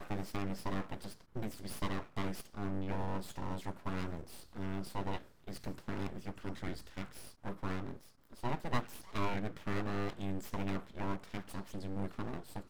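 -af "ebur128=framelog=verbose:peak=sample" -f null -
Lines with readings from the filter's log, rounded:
Integrated loudness:
  I:         -41.7 LUFS
  Threshold: -51.7 LUFS
Loudness range:
  LRA:         4.1 LU
  Threshold: -61.7 LUFS
  LRA low:   -44.0 LUFS
  LRA high:  -39.9 LUFS
Sample peak:
  Peak:      -18.5 dBFS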